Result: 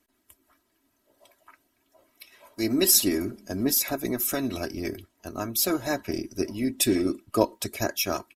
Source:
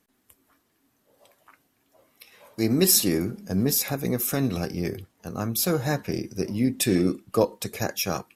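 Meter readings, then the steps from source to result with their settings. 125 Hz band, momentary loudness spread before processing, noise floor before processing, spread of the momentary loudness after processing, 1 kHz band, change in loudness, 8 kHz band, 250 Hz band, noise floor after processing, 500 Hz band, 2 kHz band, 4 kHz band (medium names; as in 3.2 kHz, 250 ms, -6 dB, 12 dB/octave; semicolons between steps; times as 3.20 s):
-9.0 dB, 12 LU, -70 dBFS, 14 LU, +0.5 dB, -1.0 dB, +0.5 dB, -2.0 dB, -72 dBFS, -1.5 dB, 0.0 dB, +0.5 dB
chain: harmonic-percussive split harmonic -8 dB; comb 3.1 ms, depth 66%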